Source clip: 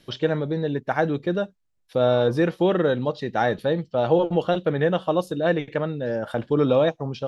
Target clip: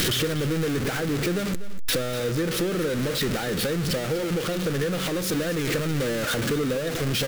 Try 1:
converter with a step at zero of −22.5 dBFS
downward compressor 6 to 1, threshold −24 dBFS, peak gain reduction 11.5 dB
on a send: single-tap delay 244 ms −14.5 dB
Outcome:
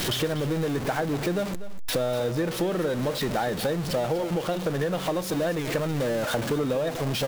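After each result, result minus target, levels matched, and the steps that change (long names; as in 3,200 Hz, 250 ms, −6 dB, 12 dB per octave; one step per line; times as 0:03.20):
1,000 Hz band +4.5 dB; converter with a step at zero: distortion −6 dB
add after downward compressor: flat-topped bell 800 Hz −9 dB 1 octave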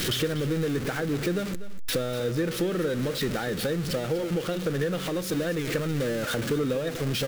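converter with a step at zero: distortion −6 dB
change: converter with a step at zero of −13.5 dBFS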